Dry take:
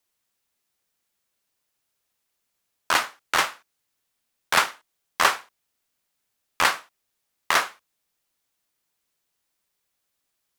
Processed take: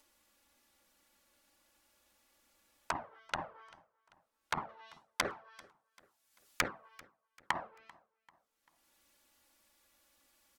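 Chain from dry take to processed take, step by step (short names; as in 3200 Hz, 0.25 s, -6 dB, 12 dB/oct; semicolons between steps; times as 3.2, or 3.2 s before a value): de-hum 222.9 Hz, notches 28; expander -52 dBFS; treble ducked by the level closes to 550 Hz, closed at -22 dBFS; high shelf 2200 Hz -7 dB, from 4.69 s +7.5 dB, from 6.68 s -4.5 dB; upward compressor, threshold -26 dBFS; envelope flanger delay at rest 3.6 ms, full sweep at -20.5 dBFS; feedback echo 0.391 s, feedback 43%, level -23.5 dB; gain -4 dB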